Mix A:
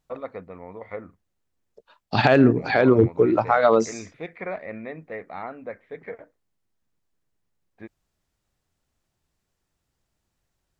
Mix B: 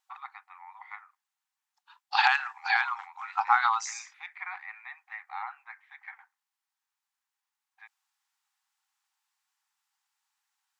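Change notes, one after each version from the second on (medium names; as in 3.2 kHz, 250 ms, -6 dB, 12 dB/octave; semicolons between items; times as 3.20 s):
master: add brick-wall FIR high-pass 750 Hz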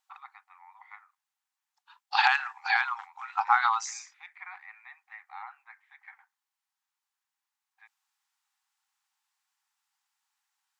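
first voice -5.5 dB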